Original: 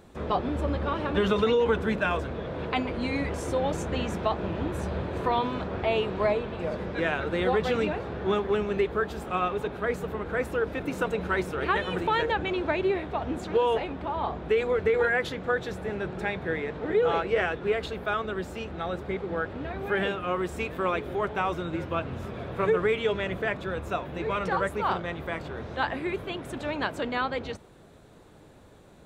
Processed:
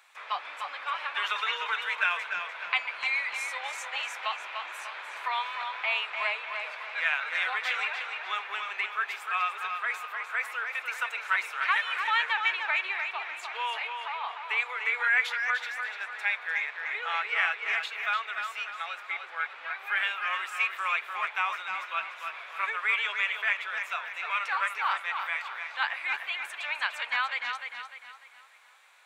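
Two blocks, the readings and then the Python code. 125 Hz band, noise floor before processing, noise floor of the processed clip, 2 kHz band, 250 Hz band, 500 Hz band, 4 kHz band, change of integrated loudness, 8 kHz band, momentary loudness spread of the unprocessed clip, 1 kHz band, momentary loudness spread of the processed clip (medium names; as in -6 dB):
under -40 dB, -52 dBFS, -46 dBFS, +5.5 dB, under -35 dB, -21.0 dB, +3.5 dB, -1.0 dB, no reading, 8 LU, -1.5 dB, 9 LU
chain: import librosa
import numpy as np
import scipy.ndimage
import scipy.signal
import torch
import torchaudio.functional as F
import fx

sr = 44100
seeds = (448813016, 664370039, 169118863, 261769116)

p1 = scipy.signal.sosfilt(scipy.signal.butter(4, 1000.0, 'highpass', fs=sr, output='sos'), x)
p2 = fx.peak_eq(p1, sr, hz=2300.0, db=9.0, octaves=0.56)
y = p2 + fx.echo_tape(p2, sr, ms=298, feedback_pct=45, wet_db=-5.0, lp_hz=5500.0, drive_db=16.0, wow_cents=23, dry=0)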